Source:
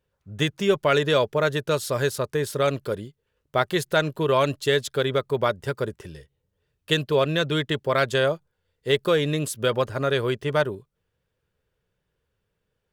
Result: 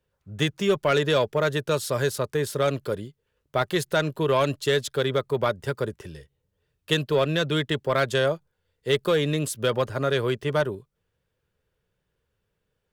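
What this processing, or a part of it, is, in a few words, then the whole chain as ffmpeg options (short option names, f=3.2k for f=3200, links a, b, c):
one-band saturation: -filter_complex "[0:a]acrossover=split=220|4700[a][b][c];[b]asoftclip=type=tanh:threshold=-13.5dB[d];[a][d][c]amix=inputs=3:normalize=0"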